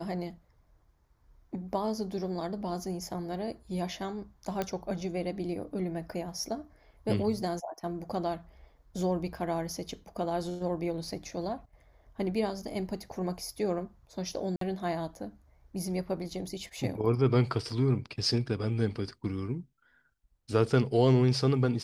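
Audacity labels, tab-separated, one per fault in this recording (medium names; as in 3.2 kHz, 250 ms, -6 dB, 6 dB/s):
4.620000	4.620000	pop -17 dBFS
14.560000	14.610000	dropout 53 ms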